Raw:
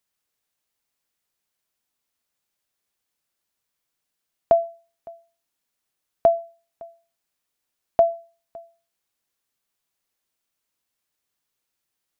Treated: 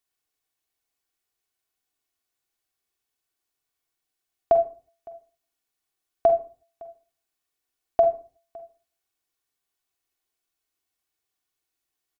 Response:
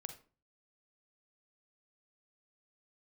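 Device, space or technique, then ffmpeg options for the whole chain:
microphone above a desk: -filter_complex "[0:a]aecho=1:1:2.7:0.57[link_01];[1:a]atrim=start_sample=2205[link_02];[link_01][link_02]afir=irnorm=-1:irlink=0"

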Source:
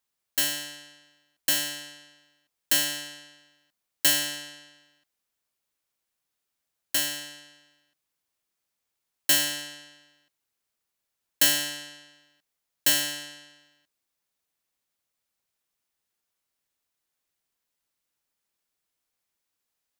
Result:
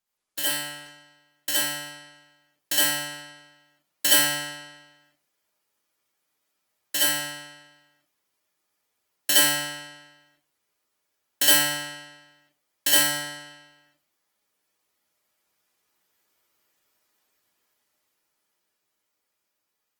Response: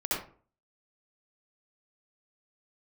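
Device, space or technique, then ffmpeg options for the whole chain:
far-field microphone of a smart speaker: -filter_complex "[0:a]asettb=1/sr,asplit=3[link_01][link_02][link_03];[link_01]atrim=end=12.944[link_04];[link_02]atrim=start=12.94:end=13.4,asetpts=PTS-STARTPTS,afade=type=in:duration=0.004:curve=qsin,afade=type=out:start_time=0.456:duration=0.004:curve=qsin,bandreject=frequency=2700:width=8.6[link_05];[link_03]atrim=start=13.396[link_06];[link_04][link_05]acrossfade=duration=0.004:curve1=hsin:curve2=qsin[link_07];[link_07][link_06]acrossfade=duration=0.004:curve1=qsin:curve2=hsin[link_08];[1:a]atrim=start_sample=2205[link_09];[link_08][link_09]afir=irnorm=-1:irlink=0,highpass=frequency=130:poles=1,dynaudnorm=framelen=380:gausssize=17:maxgain=16dB,volume=-3dB" -ar 48000 -c:a libopus -b:a 20k

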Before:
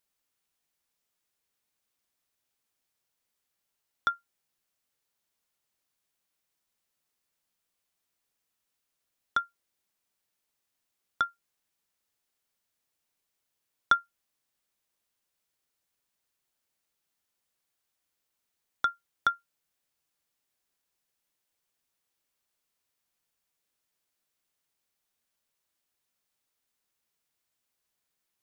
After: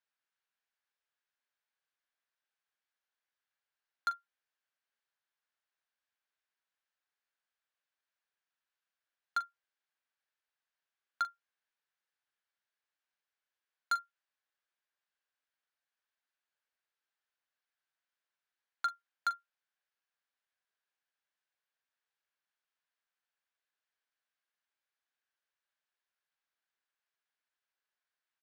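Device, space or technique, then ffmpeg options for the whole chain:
megaphone: -filter_complex "[0:a]highpass=590,lowpass=3900,equalizer=frequency=1600:width_type=o:width=0.33:gain=8,asoftclip=type=hard:threshold=-20.5dB,asplit=2[link_01][link_02];[link_02]adelay=42,volume=-13dB[link_03];[link_01][link_03]amix=inputs=2:normalize=0,volume=-6dB"

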